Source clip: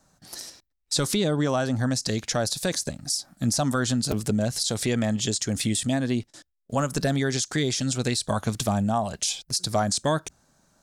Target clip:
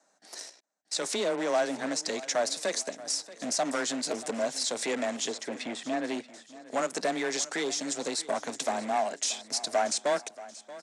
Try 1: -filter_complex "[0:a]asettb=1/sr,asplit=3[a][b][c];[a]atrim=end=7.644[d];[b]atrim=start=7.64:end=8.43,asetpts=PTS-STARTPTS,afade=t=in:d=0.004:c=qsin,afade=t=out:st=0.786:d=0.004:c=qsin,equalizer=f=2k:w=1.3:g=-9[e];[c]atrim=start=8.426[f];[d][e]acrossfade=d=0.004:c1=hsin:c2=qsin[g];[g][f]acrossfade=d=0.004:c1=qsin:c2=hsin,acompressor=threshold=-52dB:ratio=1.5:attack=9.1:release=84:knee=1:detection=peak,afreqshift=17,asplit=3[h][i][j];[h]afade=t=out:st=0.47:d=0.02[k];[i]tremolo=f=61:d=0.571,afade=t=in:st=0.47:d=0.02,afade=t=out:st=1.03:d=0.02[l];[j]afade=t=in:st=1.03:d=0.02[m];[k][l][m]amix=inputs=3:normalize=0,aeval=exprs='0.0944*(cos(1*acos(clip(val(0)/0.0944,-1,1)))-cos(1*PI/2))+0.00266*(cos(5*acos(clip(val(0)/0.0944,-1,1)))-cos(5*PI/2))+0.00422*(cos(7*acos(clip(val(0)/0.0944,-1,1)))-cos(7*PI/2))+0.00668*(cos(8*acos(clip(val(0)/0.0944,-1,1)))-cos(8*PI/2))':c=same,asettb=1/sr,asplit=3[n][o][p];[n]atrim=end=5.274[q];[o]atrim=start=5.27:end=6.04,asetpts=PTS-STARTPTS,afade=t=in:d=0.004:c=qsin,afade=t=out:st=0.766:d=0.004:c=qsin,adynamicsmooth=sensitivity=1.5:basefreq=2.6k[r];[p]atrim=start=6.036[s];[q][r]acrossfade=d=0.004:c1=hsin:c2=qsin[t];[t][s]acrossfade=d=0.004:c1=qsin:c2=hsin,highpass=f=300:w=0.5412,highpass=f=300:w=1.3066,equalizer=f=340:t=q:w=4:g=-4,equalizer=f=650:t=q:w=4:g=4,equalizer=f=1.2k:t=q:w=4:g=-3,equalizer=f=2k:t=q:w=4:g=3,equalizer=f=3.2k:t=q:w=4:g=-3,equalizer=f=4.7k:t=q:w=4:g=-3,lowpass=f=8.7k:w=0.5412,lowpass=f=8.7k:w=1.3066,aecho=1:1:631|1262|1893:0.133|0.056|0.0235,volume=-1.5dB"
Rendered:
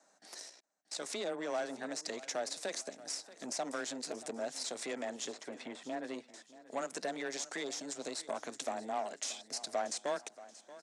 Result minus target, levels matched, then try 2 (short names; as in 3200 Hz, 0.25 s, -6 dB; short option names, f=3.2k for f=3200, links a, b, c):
compressor: peak gain reduction +11.5 dB
-filter_complex "[0:a]asettb=1/sr,asplit=3[a][b][c];[a]atrim=end=7.644[d];[b]atrim=start=7.64:end=8.43,asetpts=PTS-STARTPTS,afade=t=in:d=0.004:c=qsin,afade=t=out:st=0.786:d=0.004:c=qsin,equalizer=f=2k:w=1.3:g=-9[e];[c]atrim=start=8.426[f];[d][e]acrossfade=d=0.004:c1=hsin:c2=qsin[g];[g][f]acrossfade=d=0.004:c1=qsin:c2=hsin,afreqshift=17,asplit=3[h][i][j];[h]afade=t=out:st=0.47:d=0.02[k];[i]tremolo=f=61:d=0.571,afade=t=in:st=0.47:d=0.02,afade=t=out:st=1.03:d=0.02[l];[j]afade=t=in:st=1.03:d=0.02[m];[k][l][m]amix=inputs=3:normalize=0,aeval=exprs='0.0944*(cos(1*acos(clip(val(0)/0.0944,-1,1)))-cos(1*PI/2))+0.00266*(cos(5*acos(clip(val(0)/0.0944,-1,1)))-cos(5*PI/2))+0.00422*(cos(7*acos(clip(val(0)/0.0944,-1,1)))-cos(7*PI/2))+0.00668*(cos(8*acos(clip(val(0)/0.0944,-1,1)))-cos(8*PI/2))':c=same,asettb=1/sr,asplit=3[n][o][p];[n]atrim=end=5.274[q];[o]atrim=start=5.27:end=6.04,asetpts=PTS-STARTPTS,afade=t=in:d=0.004:c=qsin,afade=t=out:st=0.766:d=0.004:c=qsin,adynamicsmooth=sensitivity=1.5:basefreq=2.6k[r];[p]atrim=start=6.036[s];[q][r]acrossfade=d=0.004:c1=hsin:c2=qsin[t];[t][s]acrossfade=d=0.004:c1=qsin:c2=hsin,highpass=f=300:w=0.5412,highpass=f=300:w=1.3066,equalizer=f=340:t=q:w=4:g=-4,equalizer=f=650:t=q:w=4:g=4,equalizer=f=1.2k:t=q:w=4:g=-3,equalizer=f=2k:t=q:w=4:g=3,equalizer=f=3.2k:t=q:w=4:g=-3,equalizer=f=4.7k:t=q:w=4:g=-3,lowpass=f=8.7k:w=0.5412,lowpass=f=8.7k:w=1.3066,aecho=1:1:631|1262|1893:0.133|0.056|0.0235,volume=-1.5dB"